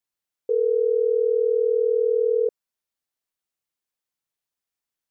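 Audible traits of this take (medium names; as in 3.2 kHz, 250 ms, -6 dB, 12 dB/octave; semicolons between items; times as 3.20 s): noise floor -88 dBFS; spectral tilt +2.0 dB/octave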